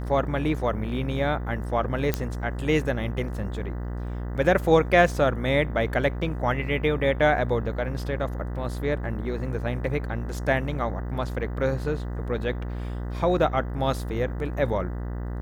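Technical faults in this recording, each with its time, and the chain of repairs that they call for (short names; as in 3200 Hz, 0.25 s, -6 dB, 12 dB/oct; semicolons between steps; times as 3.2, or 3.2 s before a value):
buzz 60 Hz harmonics 33 -31 dBFS
2.14 pop -9 dBFS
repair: de-click; de-hum 60 Hz, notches 33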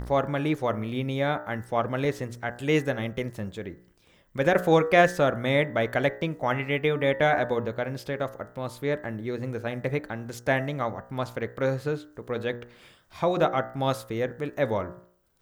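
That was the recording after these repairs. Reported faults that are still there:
none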